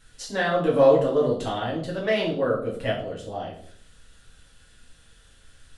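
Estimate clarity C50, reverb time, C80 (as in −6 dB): 6.5 dB, 0.55 s, 10.5 dB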